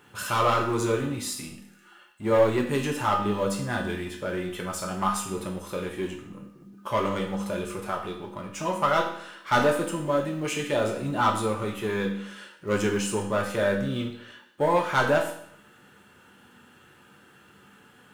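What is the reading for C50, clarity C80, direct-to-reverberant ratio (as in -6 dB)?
7.0 dB, 10.0 dB, -0.5 dB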